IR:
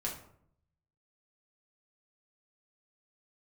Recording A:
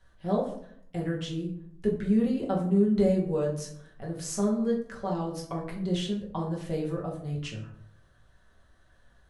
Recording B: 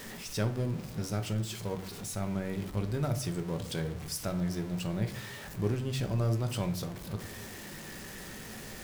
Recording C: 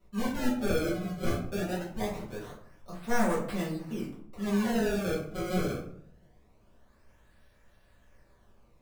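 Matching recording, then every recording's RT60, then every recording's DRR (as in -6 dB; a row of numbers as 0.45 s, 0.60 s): A; 0.65 s, 0.65 s, 0.65 s; -3.0 dB, 6.0 dB, -8.0 dB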